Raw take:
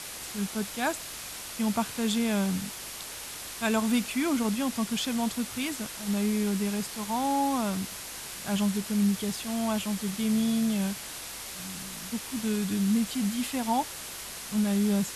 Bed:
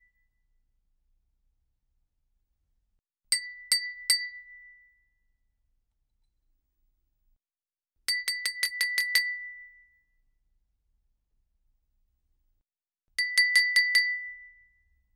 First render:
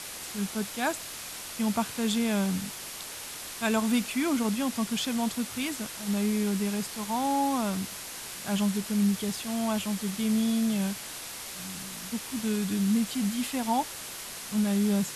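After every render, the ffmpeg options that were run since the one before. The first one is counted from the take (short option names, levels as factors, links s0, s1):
-af "bandreject=f=50:t=h:w=4,bandreject=f=100:t=h:w=4,bandreject=f=150:t=h:w=4"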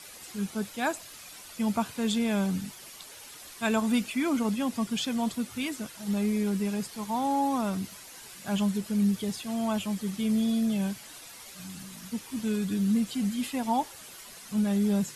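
-af "afftdn=nr=10:nf=-40"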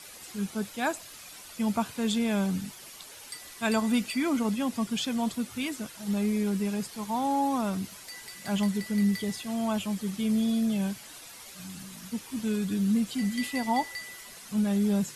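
-filter_complex "[1:a]volume=0.15[s0];[0:a][s0]amix=inputs=2:normalize=0"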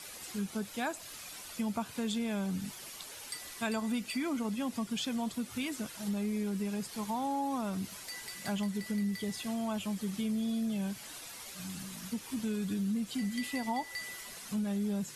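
-af "acompressor=threshold=0.0224:ratio=3"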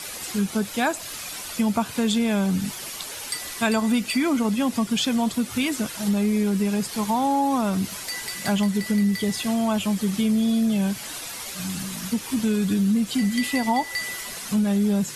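-af "volume=3.98"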